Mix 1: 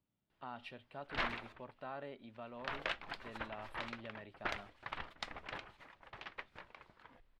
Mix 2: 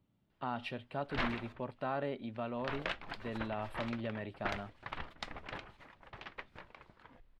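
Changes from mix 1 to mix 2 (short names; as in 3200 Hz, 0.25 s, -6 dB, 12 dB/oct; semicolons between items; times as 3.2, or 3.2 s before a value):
speech +7.5 dB; master: add low shelf 430 Hz +6 dB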